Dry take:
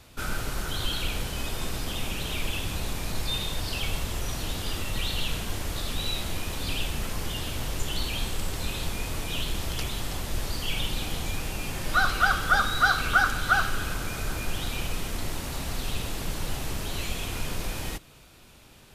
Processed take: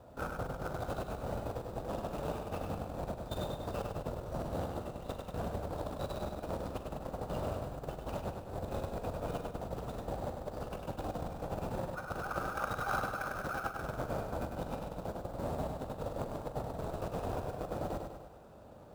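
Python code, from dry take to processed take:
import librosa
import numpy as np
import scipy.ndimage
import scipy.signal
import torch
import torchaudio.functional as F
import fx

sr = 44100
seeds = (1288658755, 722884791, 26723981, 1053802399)

p1 = scipy.signal.medfilt(x, 41)
p2 = fx.sample_hold(p1, sr, seeds[0], rate_hz=3900.0, jitter_pct=0)
p3 = p1 + (p2 * librosa.db_to_amplitude(-8.0))
p4 = fx.high_shelf(p3, sr, hz=4900.0, db=6.0)
p5 = fx.over_compress(p4, sr, threshold_db=-30.0, ratio=-0.5)
p6 = fx.highpass(p5, sr, hz=120.0, slope=6)
p7 = fx.band_shelf(p6, sr, hz=830.0, db=11.5, octaves=1.7)
p8 = fx.doubler(p7, sr, ms=43.0, db=-13.0)
p9 = p8 + fx.echo_feedback(p8, sr, ms=100, feedback_pct=53, wet_db=-5.5, dry=0)
y = p9 * librosa.db_to_amplitude(-6.5)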